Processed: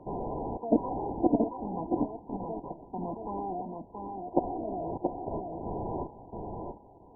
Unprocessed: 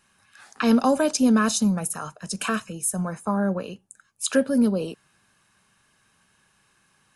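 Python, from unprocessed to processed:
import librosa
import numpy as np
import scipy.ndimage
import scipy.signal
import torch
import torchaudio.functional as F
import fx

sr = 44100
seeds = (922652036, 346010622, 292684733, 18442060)

p1 = fx.dmg_wind(x, sr, seeds[0], corner_hz=590.0, level_db=-31.0)
p2 = fx.level_steps(p1, sr, step_db=16)
p3 = fx.brickwall_lowpass(p2, sr, high_hz=1000.0)
p4 = fx.formant_shift(p3, sr, semitones=5)
p5 = p4 + fx.echo_multitap(p4, sr, ms=(677, 708), db=(-4.5, -17.0), dry=0)
y = F.gain(torch.from_numpy(p5), -2.0).numpy()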